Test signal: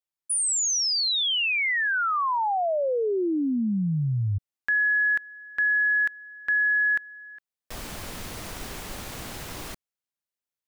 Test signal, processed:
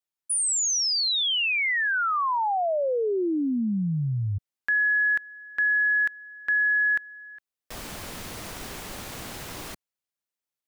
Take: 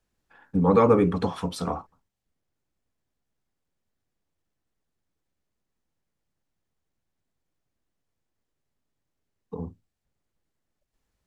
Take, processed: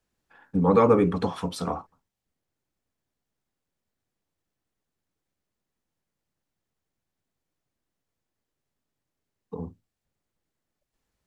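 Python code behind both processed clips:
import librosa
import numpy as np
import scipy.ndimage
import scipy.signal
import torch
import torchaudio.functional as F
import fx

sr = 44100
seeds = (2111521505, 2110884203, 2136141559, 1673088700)

y = fx.low_shelf(x, sr, hz=69.0, db=-6.0)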